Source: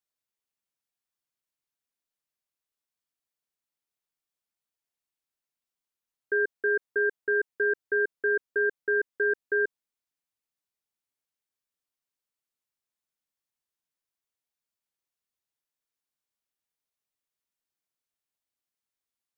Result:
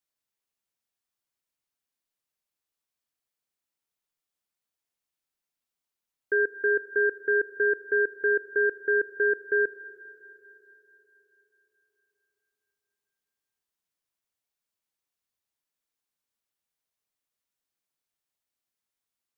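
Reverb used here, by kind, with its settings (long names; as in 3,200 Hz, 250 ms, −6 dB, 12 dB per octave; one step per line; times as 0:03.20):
four-comb reverb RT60 3.9 s, combs from 27 ms, DRR 13.5 dB
level +1.5 dB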